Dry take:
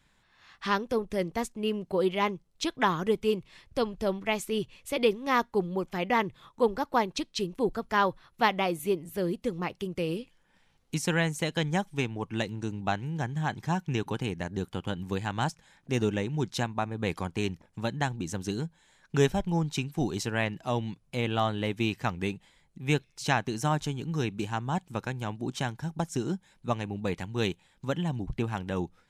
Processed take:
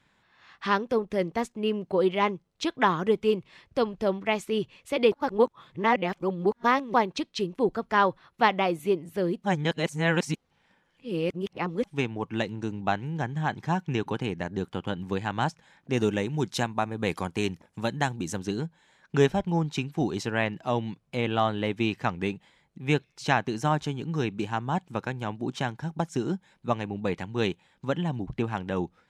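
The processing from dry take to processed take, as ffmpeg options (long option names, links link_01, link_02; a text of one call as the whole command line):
ffmpeg -i in.wav -filter_complex "[0:a]asettb=1/sr,asplit=3[link_01][link_02][link_03];[link_01]atrim=end=15.974[link_04];[link_02]atrim=start=15.97:end=18.4,asetpts=PTS-STARTPTS,afade=type=in:duration=0.004:curve=qsin,afade=type=out:start_time=2.426:duration=0.004:curve=qsin,equalizer=frequency=12000:width_type=o:width=1.5:gain=12[link_05];[link_03]atrim=start=18.396[link_06];[link_04][link_05]acrossfade=duration=0.004:curve1=hsin:curve2=qsin[link_07];[link_07][link_06]acrossfade=duration=0.004:curve1=qsin:curve2=hsin,asplit=5[link_08][link_09][link_10][link_11][link_12];[link_08]atrim=end=5.122[link_13];[link_09]atrim=start=5.118:end=6.942,asetpts=PTS-STARTPTS,areverse[link_14];[link_10]atrim=start=6.938:end=9.442[link_15];[link_11]atrim=start=9.438:end=11.842,asetpts=PTS-STARTPTS,areverse[link_16];[link_12]atrim=start=11.838[link_17];[link_13][link_14]acrossfade=duration=0.004:curve1=hsin:curve2=hsin[link_18];[link_18][link_15]acrossfade=duration=0.004:curve1=hsin:curve2=hsin[link_19];[link_19][link_16]acrossfade=duration=0.004:curve1=hsin:curve2=hsin[link_20];[link_20][link_17]acrossfade=duration=0.004:curve1=hsin:curve2=hsin,highpass=frequency=140:poles=1,aemphasis=mode=reproduction:type=50kf,volume=3.5dB" out.wav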